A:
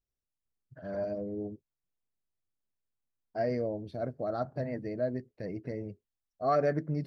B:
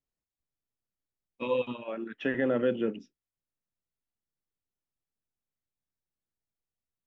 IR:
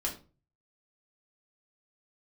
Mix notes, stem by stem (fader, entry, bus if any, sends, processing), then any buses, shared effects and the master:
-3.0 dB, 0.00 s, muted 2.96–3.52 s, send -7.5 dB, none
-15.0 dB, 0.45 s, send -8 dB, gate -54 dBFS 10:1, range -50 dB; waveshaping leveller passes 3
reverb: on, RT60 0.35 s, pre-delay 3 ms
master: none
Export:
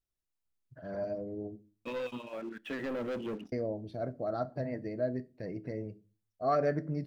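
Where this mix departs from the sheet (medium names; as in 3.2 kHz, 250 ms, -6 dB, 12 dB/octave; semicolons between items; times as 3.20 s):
stem B: send -8 dB -> -15.5 dB; reverb return -6.5 dB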